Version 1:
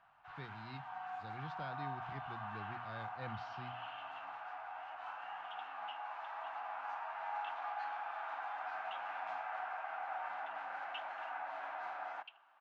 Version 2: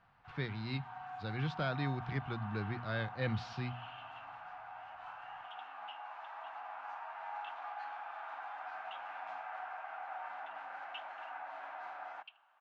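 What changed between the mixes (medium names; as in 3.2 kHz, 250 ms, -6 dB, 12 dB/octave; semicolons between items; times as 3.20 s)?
speech +11.5 dB; first sound: send off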